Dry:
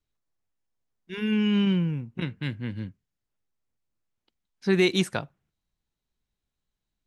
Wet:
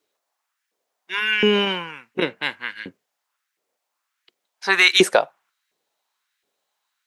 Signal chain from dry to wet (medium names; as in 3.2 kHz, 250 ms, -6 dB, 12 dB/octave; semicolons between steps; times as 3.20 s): LFO high-pass saw up 1.4 Hz 380–1900 Hz; loudness maximiser +13 dB; trim -1 dB